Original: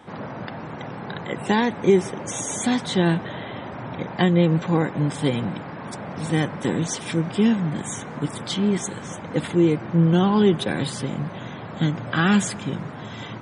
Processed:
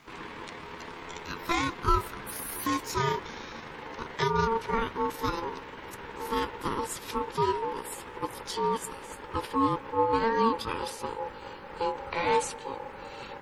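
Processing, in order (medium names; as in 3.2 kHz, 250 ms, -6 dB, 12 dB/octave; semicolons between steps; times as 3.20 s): pitch bend over the whole clip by +10 st ending unshifted; bit crusher 11-bit; ring modulator 680 Hz; trim -4 dB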